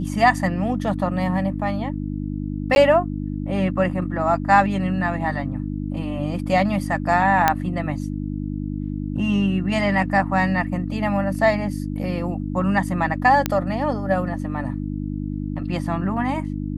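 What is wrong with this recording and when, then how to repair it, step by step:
hum 50 Hz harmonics 6 -27 dBFS
2.75–2.76 s: dropout 11 ms
7.48 s: pop -2 dBFS
13.46 s: pop -5 dBFS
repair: de-click; de-hum 50 Hz, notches 6; interpolate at 2.75 s, 11 ms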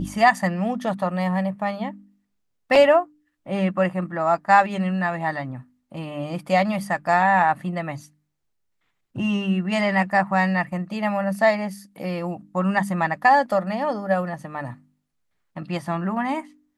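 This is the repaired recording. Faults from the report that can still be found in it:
nothing left

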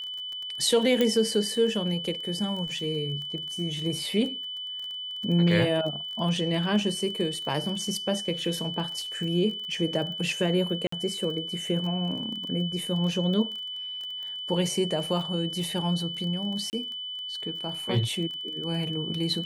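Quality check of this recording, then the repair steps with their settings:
crackle 20 per s -34 dBFS
whine 3 kHz -33 dBFS
1.01 s: pop -11 dBFS
10.87–10.92 s: dropout 54 ms
16.70–16.73 s: dropout 29 ms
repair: de-click; band-stop 3 kHz, Q 30; interpolate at 10.87 s, 54 ms; interpolate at 16.70 s, 29 ms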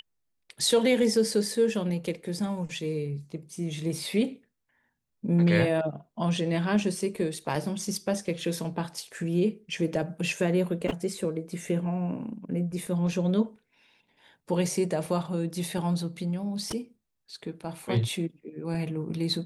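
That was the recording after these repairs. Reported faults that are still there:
nothing left

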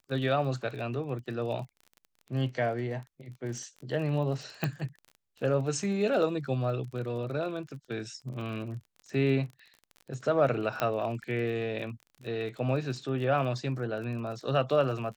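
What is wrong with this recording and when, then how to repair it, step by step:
crackle 32 per s -39 dBFS
4.64 s: pop -16 dBFS
10.80 s: pop -15 dBFS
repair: de-click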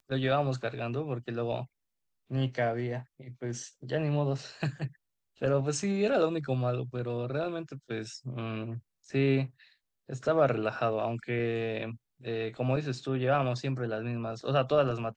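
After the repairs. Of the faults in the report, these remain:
4.64 s: pop

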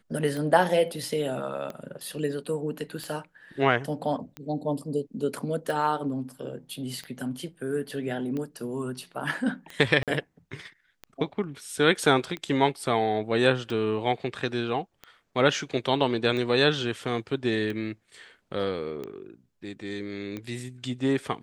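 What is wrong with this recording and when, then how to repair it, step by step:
tick 45 rpm -22 dBFS
10.03–10.08 s: dropout 47 ms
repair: de-click; interpolate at 10.03 s, 47 ms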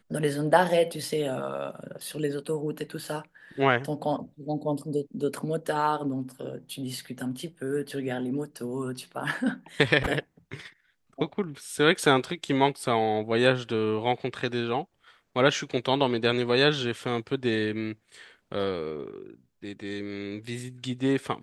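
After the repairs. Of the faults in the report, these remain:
nothing left

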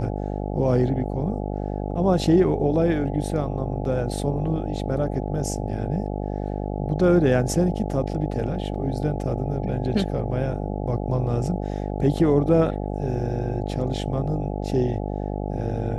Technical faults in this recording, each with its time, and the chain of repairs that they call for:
buzz 50 Hz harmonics 17 -28 dBFS
8.75 s: dropout 3.1 ms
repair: de-hum 50 Hz, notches 17; interpolate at 8.75 s, 3.1 ms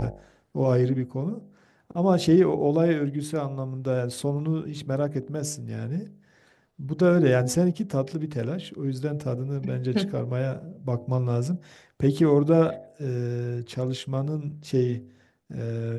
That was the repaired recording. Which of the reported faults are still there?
nothing left

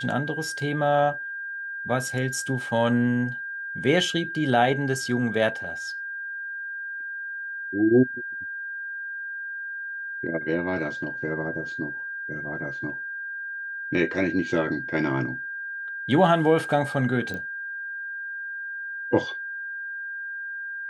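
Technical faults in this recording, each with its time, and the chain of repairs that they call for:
whine 1.6 kHz -31 dBFS
17.34 s: pop -21 dBFS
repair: de-click; band-stop 1.6 kHz, Q 30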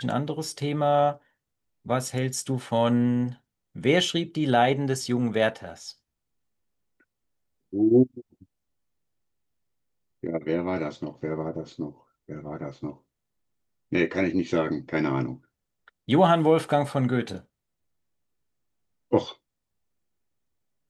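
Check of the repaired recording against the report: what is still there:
nothing left

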